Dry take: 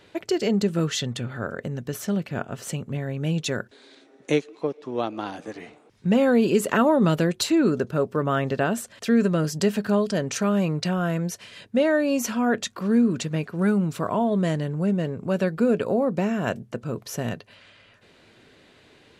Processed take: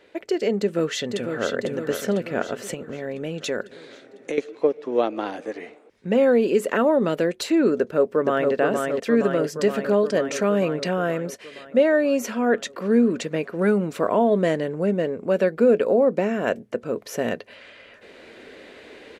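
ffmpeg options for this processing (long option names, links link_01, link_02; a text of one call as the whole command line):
ffmpeg -i in.wav -filter_complex "[0:a]asplit=2[link_01][link_02];[link_02]afade=type=in:start_time=0.59:duration=0.01,afade=type=out:start_time=1.57:duration=0.01,aecho=0:1:500|1000|1500|2000|2500|3000|3500|4000:0.375837|0.225502|0.135301|0.0811809|0.0487085|0.0292251|0.0175351|0.010521[link_03];[link_01][link_03]amix=inputs=2:normalize=0,asettb=1/sr,asplit=3[link_04][link_05][link_06];[link_04]atrim=end=2.744[link_07];[link_05]atrim=start=2.74:end=4.38,asetpts=PTS-STARTPTS,afade=type=in:duration=0.004:curve=qsin,afade=type=out:start_time=1.636:duration=0.004:curve=qsin,acompressor=threshold=-31dB:ratio=4:attack=3.2:release=140:knee=1:detection=peak[link_08];[link_06]atrim=start=4.376[link_09];[link_07][link_08]acrossfade=duration=0.004:curve1=hsin:curve2=qsin[link_10];[link_10][link_09]acrossfade=duration=0.004:curve1=qsin:curve2=hsin,asplit=2[link_11][link_12];[link_12]afade=type=in:start_time=7.77:duration=0.01,afade=type=out:start_time=8.52:duration=0.01,aecho=0:1:470|940|1410|1880|2350|2820|3290|3760|4230|4700|5170|5640:0.707946|0.495562|0.346893|0.242825|0.169978|0.118984|0.0832891|0.0583024|0.0408117|0.0285682|0.0199977|0.0139984[link_13];[link_11][link_13]amix=inputs=2:normalize=0,equalizer=frequency=125:width_type=o:width=1:gain=-10,equalizer=frequency=250:width_type=o:width=1:gain=4,equalizer=frequency=500:width_type=o:width=1:gain=10,equalizer=frequency=2000:width_type=o:width=1:gain=7,dynaudnorm=framelen=200:gausssize=7:maxgain=11.5dB,volume=-7dB" out.wav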